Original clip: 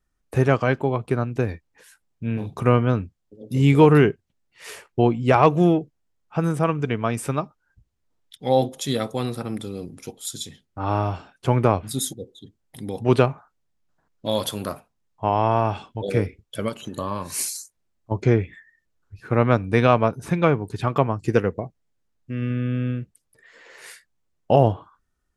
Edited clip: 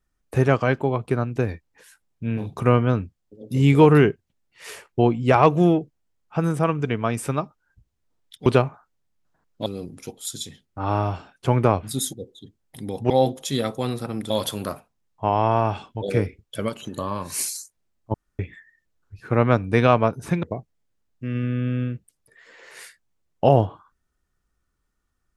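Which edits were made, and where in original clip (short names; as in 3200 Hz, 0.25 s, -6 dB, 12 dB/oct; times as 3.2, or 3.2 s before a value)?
8.46–9.66 swap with 13.1–14.3
18.14–18.39 room tone
20.43–21.5 cut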